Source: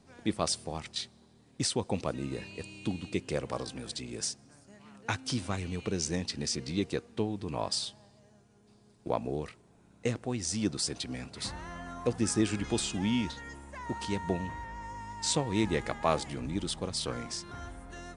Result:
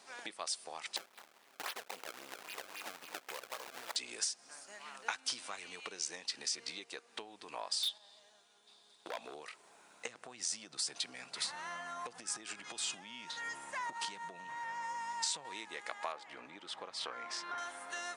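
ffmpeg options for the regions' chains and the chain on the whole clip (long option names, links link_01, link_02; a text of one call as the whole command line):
ffmpeg -i in.wav -filter_complex "[0:a]asettb=1/sr,asplit=3[link_01][link_02][link_03];[link_01]atrim=end=0.964[link_04];[link_02]atrim=start=0.96:end=3.96,asetpts=PTS-STARTPTS,afade=type=in:duration=0.004:curve=qsin,afade=type=out:start_time=2.996:duration=0.004:curve=qsin,aecho=1:1:214:0.0794,atrim=end_sample=132300,acrusher=samples=27:mix=1:aa=0.000001:lfo=1:lforange=43.2:lforate=3.7,aeval=exprs='max(val(0),0)':channel_layout=same[link_05];[link_03]atrim=start=3.956[link_06];[link_04][link_05]acrossfade=duration=0.004:curve1=hsin:curve2=qsin[link_07];[link_07][link_06]acrossfade=duration=0.004:curve1=qsin:curve2=hsin,asettb=1/sr,asplit=3[link_08][link_09][link_10];[link_08]atrim=end=7.834[link_11];[link_09]atrim=start=7.83:end=9.34,asetpts=PTS-STARTPTS,afade=type=in:duration=0.004:curve=qsin,afade=type=out:start_time=1.506:duration=0.004:curve=qsin,equalizer=frequency=3600:width=4.3:gain=15,asoftclip=type=hard:threshold=-27.5dB,agate=range=-7dB:threshold=-54dB:ratio=16:release=100:detection=peak[link_12];[link_10]atrim=start=9.336[link_13];[link_11][link_12]acrossfade=duration=0.004:curve1=hsin:curve2=qsin[link_14];[link_14][link_13]acrossfade=duration=0.004:curve1=qsin:curve2=hsin,asettb=1/sr,asplit=3[link_15][link_16][link_17];[link_15]atrim=end=10.074[link_18];[link_16]atrim=start=10.07:end=15.45,asetpts=PTS-STARTPTS,afade=type=in:duration=0.004:curve=qsin,afade=type=out:start_time=5.376:duration=0.004:curve=qsin,equalizer=frequency=150:width=1.5:gain=11.5,acompressor=threshold=-29dB:ratio=4:attack=3.2:release=140:knee=1:detection=peak[link_19];[link_17]atrim=start=15.446[link_20];[link_18][link_19]acrossfade=duration=0.004:curve1=hsin:curve2=qsin[link_21];[link_21][link_20]acrossfade=duration=0.004:curve1=qsin:curve2=hsin,asettb=1/sr,asplit=3[link_22][link_23][link_24];[link_22]atrim=end=16.124[link_25];[link_23]atrim=start=16.12:end=17.58,asetpts=PTS-STARTPTS,afade=type=in:duration=0.004:curve=qsin,afade=type=out:start_time=1.456:duration=0.004:curve=qsin,lowpass=1800,aemphasis=mode=production:type=75fm[link_26];[link_24]atrim=start=17.576[link_27];[link_25][link_26]acrossfade=duration=0.004:curve1=hsin:curve2=qsin[link_28];[link_28][link_27]acrossfade=duration=0.004:curve1=qsin:curve2=hsin,acompressor=threshold=-42dB:ratio=12,highpass=870,volume=10dB" out.wav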